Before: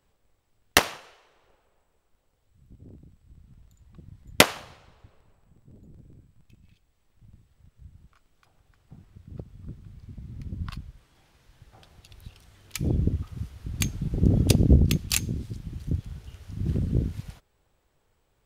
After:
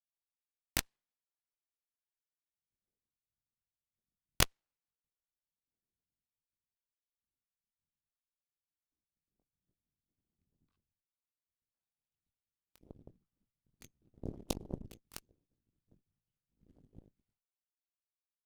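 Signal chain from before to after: chorus voices 4, 0.12 Hz, delay 21 ms, depth 3.1 ms; full-wave rectifier; Chebyshev shaper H 3 -9 dB, 5 -37 dB, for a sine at -3.5 dBFS

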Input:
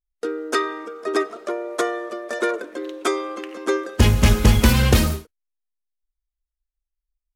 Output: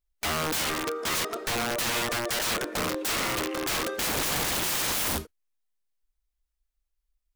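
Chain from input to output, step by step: in parallel at -0.5 dB: compression 5:1, threshold -26 dBFS, peak gain reduction 15.5 dB; on the sum: peak limiter -7.5 dBFS, peak gain reduction 5 dB; integer overflow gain 21 dB; trim -2 dB

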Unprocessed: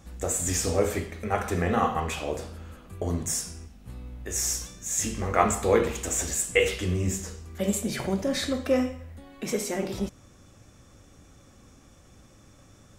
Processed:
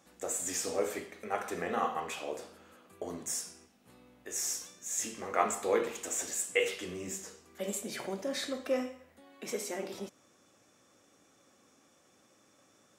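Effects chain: high-pass 300 Hz 12 dB/octave; trim -6.5 dB

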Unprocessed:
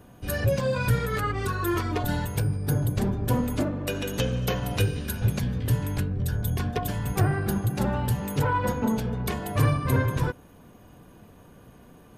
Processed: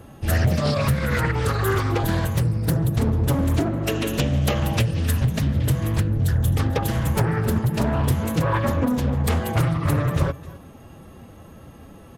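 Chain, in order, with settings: delay 261 ms -21.5 dB; compression 12:1, threshold -23 dBFS, peak gain reduction 7.5 dB; formant-preserving pitch shift +2 st; peaking EQ 82 Hz +8.5 dB 0.25 oct; loudspeaker Doppler distortion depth 0.49 ms; trim +6.5 dB

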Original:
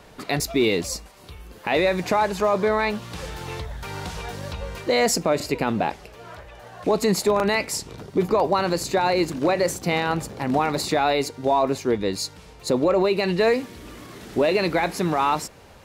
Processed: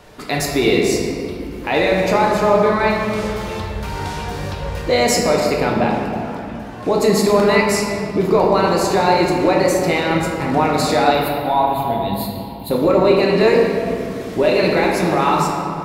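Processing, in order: 11.14–12.71 s: FFT filter 200 Hz 0 dB, 440 Hz -17 dB, 810 Hz +7 dB, 1.3 kHz -10 dB, 2.2 kHz -8 dB, 3.5 kHz +3 dB, 6 kHz -27 dB, 13 kHz +13 dB; reverberation RT60 2.6 s, pre-delay 7 ms, DRR -2 dB; trim +2 dB

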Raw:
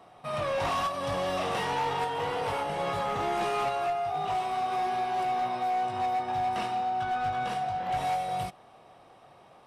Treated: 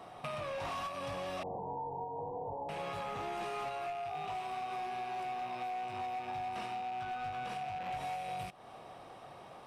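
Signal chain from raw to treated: rattle on loud lows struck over -48 dBFS, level -31 dBFS; 1.43–2.69 s: steep low-pass 980 Hz 96 dB/octave; compression 6:1, threshold -42 dBFS, peak gain reduction 14 dB; trim +3.5 dB

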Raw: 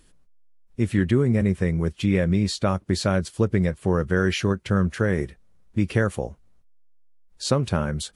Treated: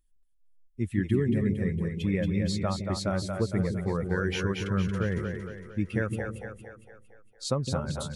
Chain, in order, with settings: expander on every frequency bin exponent 1.5; two-band feedback delay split 390 Hz, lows 162 ms, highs 229 ms, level -4.5 dB; trim -5 dB

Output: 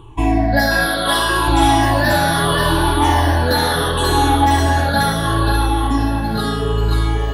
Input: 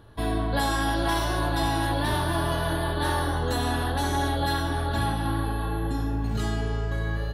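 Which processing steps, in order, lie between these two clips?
drifting ripple filter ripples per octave 0.67, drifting -0.73 Hz, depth 22 dB; 0.86–1.48 s: bass shelf 430 Hz -8.5 dB; thinning echo 534 ms, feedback 26%, high-pass 420 Hz, level -3.5 dB; trim +5 dB

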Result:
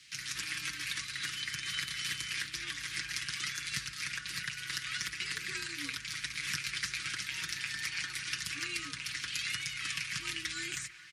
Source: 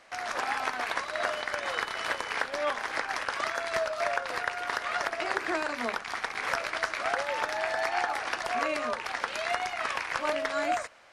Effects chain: dynamic bell 4.1 kHz, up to -5 dB, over -46 dBFS, Q 0.86; on a send: feedback echo behind a band-pass 223 ms, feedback 70%, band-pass 1.1 kHz, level -13.5 dB; on the sum: frequency shift +45 Hz; Chebyshev band-stop 130–3600 Hz, order 2; comb 6.2 ms; trim +6.5 dB

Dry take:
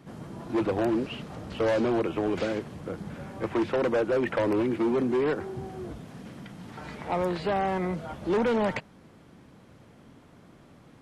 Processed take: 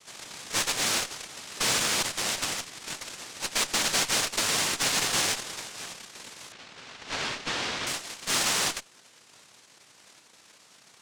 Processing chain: noise-vocoded speech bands 1; Chebyshev shaper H 8 -22 dB, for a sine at -10.5 dBFS; 6.52–7.87 s: low-pass 4.1 kHz 12 dB/octave; trim -2 dB

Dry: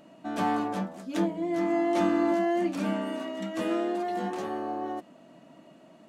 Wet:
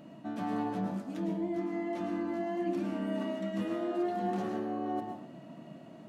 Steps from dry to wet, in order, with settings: ten-band graphic EQ 125 Hz +10 dB, 250 Hz +4 dB, 8 kHz -4 dB; reverse; compression, threshold -32 dBFS, peak gain reduction 14 dB; reverse; plate-style reverb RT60 0.58 s, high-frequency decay 0.75×, pre-delay 95 ms, DRR 3 dB; trim -1 dB

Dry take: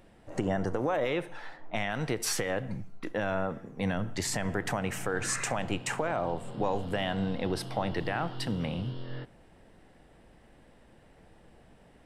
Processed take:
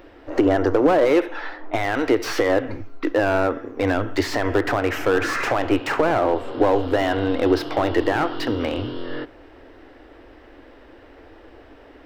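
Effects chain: FFT filter 100 Hz 0 dB, 170 Hz -26 dB, 280 Hz +9 dB, 800 Hz +2 dB, 1.3 kHz +7 dB, 1.9 kHz +4 dB, 2.7 kHz +3 dB, 5.3 kHz 0 dB, 9.2 kHz -18 dB, 14 kHz +1 dB; slew-rate limiter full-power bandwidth 58 Hz; trim +8.5 dB

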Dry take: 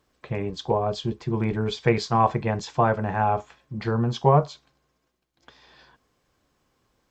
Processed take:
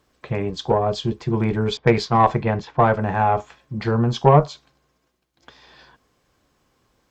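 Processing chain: 1.77–3.01 s: level-controlled noise filter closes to 790 Hz, open at -16 dBFS; Chebyshev shaper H 4 -23 dB, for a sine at -5 dBFS; trim +4.5 dB

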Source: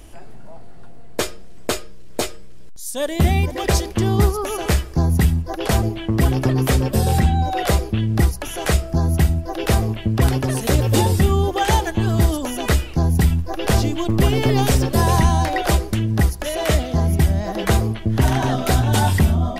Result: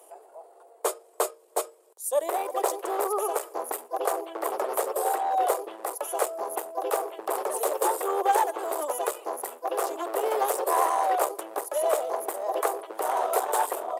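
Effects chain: high-order bell 3 kHz -14.5 dB 2.4 oct; one-sided clip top -18 dBFS, bottom -9 dBFS; dynamic bell 1.2 kHz, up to +4 dB, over -43 dBFS, Q 2.2; steep high-pass 410 Hz 48 dB/octave; tempo 1.4×

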